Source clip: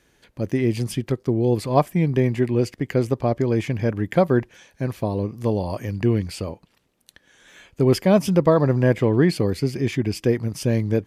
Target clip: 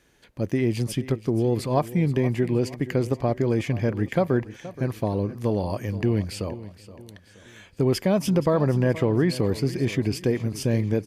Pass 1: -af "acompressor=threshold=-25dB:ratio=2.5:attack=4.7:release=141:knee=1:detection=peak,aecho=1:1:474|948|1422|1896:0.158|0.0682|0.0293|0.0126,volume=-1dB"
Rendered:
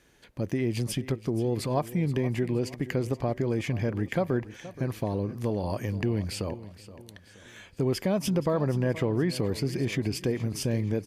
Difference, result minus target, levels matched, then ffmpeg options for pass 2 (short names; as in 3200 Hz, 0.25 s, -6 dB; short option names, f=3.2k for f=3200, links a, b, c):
compressor: peak gain reduction +5 dB
-af "acompressor=threshold=-16.5dB:ratio=2.5:attack=4.7:release=141:knee=1:detection=peak,aecho=1:1:474|948|1422|1896:0.158|0.0682|0.0293|0.0126,volume=-1dB"